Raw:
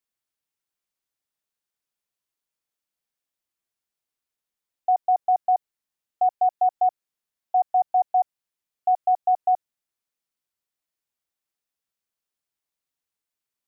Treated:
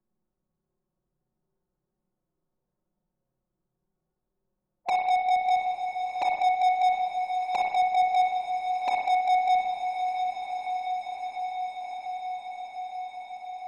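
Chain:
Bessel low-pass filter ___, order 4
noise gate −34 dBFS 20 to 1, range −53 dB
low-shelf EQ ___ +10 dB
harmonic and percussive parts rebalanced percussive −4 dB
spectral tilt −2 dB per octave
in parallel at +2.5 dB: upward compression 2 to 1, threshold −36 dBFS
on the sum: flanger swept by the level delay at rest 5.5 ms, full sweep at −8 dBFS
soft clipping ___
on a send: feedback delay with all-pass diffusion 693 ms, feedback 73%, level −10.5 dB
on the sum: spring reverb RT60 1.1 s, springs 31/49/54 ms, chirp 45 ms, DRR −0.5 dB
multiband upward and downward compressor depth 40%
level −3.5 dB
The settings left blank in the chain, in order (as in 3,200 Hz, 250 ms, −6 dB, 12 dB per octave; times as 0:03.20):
830 Hz, 460 Hz, −22 dBFS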